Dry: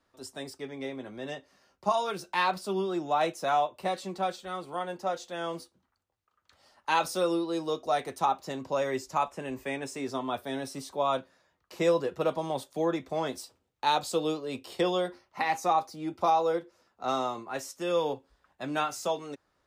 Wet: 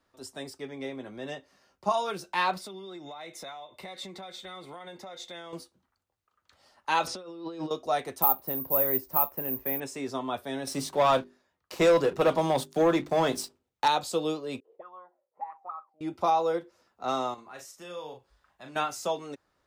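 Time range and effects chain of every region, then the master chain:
2.60–5.53 s: compression 20:1, threshold -39 dBFS + small resonant body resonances 2.1/3.6 kHz, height 17 dB, ringing for 25 ms
7.07–7.71 s: low-pass 4.4 kHz + compressor with a negative ratio -39 dBFS
8.22–9.80 s: low-pass 1.2 kHz 6 dB/octave + careless resampling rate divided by 3×, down filtered, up zero stuff
10.67–13.88 s: waveshaping leveller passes 2 + hum notches 50/100/150/200/250/300/350/400 Hz
14.60–16.01 s: auto-wah 420–1300 Hz, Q 14, up, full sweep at -22 dBFS + low-pass 2 kHz
17.34–18.76 s: peaking EQ 300 Hz -5.5 dB 2.2 oct + compression 1.5:1, threshold -55 dBFS + doubling 39 ms -6 dB
whole clip: none

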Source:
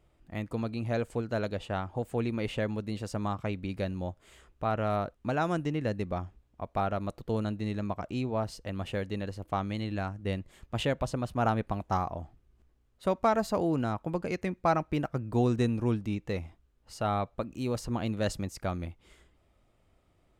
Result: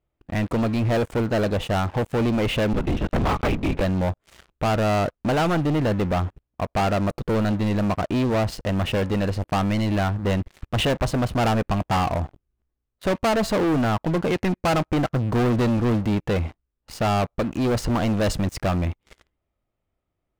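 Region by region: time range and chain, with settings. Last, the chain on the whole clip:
2.73–3.81 s: transient shaper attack +5 dB, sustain -3 dB + LPC vocoder at 8 kHz whisper
whole clip: tone controls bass 0 dB, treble -8 dB; waveshaping leveller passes 5; trim -2 dB

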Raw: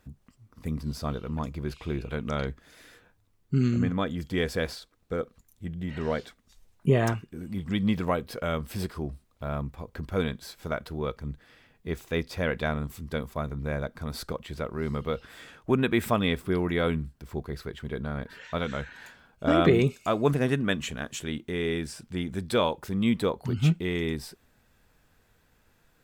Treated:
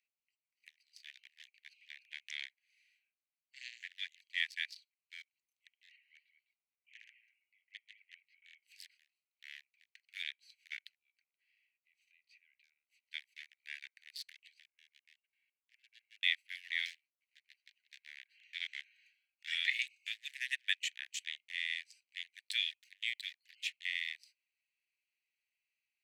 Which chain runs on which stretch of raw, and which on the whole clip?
5.96–8.63 s: ladder band-pass 2.4 kHz, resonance 50% + delay 205 ms -9 dB
10.95–13.03 s: treble shelf 4.2 kHz -6.5 dB + compression 16:1, threshold -40 dBFS + loudspeaker Doppler distortion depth 0.14 ms
14.60–16.23 s: comb filter that takes the minimum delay 1.8 ms + level held to a coarse grid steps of 17 dB + tape spacing loss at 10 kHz 45 dB
16.85–18.07 s: median filter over 41 samples + comb 7.4 ms, depth 43%
whole clip: local Wiener filter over 25 samples; steep high-pass 1.8 kHz 96 dB/octave; treble shelf 9 kHz -10 dB; trim +2 dB

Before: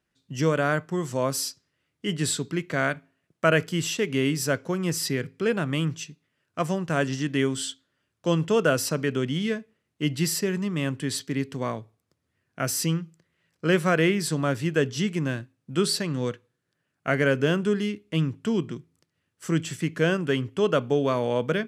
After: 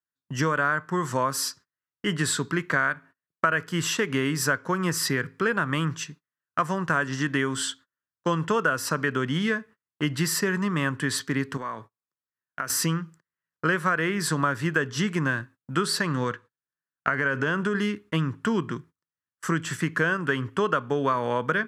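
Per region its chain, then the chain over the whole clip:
11.57–12.70 s: high-pass 220 Hz 6 dB/octave + compression 16:1, threshold -35 dBFS
16.23–17.75 s: low-pass 9.2 kHz + compression 4:1, threshold -23 dBFS
whole clip: gate -48 dBFS, range -29 dB; high-order bell 1.3 kHz +11.5 dB 1.2 oct; compression 6:1, threshold -23 dBFS; trim +2.5 dB

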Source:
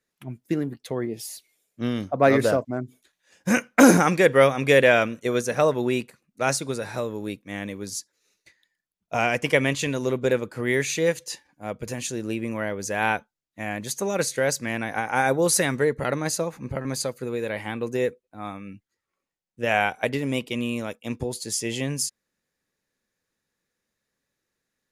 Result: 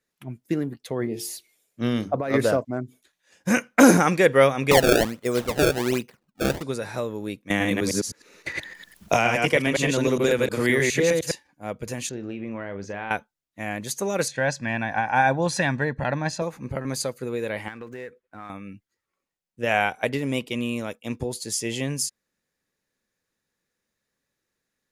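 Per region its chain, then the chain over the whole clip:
0.99–2.34 s: hum notches 50/100/150/200/250/300/350/400/450 Hz + compressor with a negative ratio -23 dBFS
4.71–6.63 s: low-pass 3.7 kHz 6 dB/octave + decimation with a swept rate 25×, swing 160% 1.3 Hz
7.50–11.32 s: chunks repeated in reverse 103 ms, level -1.5 dB + three bands compressed up and down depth 100%
12.09–13.11 s: compression 4:1, threshold -28 dBFS + distance through air 210 m + doubling 40 ms -11 dB
14.28–16.42 s: low-pass 4.1 kHz + comb 1.2 ms, depth 64%
17.68–18.50 s: median filter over 9 samples + peaking EQ 1.6 kHz +10.5 dB 1.2 oct + compression 4:1, threshold -36 dBFS
whole clip: none

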